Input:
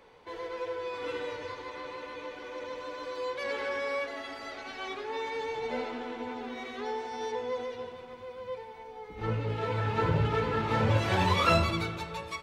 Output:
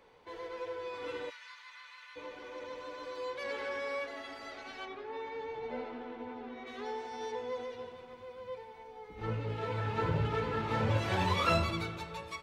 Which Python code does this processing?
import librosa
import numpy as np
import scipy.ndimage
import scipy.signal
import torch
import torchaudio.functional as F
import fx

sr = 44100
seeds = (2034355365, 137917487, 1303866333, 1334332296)

y = fx.highpass(x, sr, hz=1300.0, slope=24, at=(1.29, 2.15), fade=0.02)
y = fx.spacing_loss(y, sr, db_at_10k=21, at=(4.84, 6.66), fade=0.02)
y = y * 10.0 ** (-4.5 / 20.0)